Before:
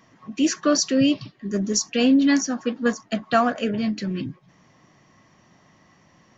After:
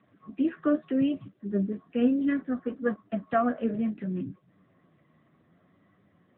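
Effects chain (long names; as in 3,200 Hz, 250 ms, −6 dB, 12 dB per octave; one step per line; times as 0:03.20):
low-pass filter 1,600 Hz 12 dB per octave
0:01.33–0:03.13: low-pass that shuts in the quiet parts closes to 1,200 Hz, open at −14 dBFS
Butterworth band-reject 890 Hz, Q 2.5
flanger 0.67 Hz, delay 9.6 ms, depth 3.7 ms, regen +35%
level −1 dB
AMR narrowband 10.2 kbit/s 8,000 Hz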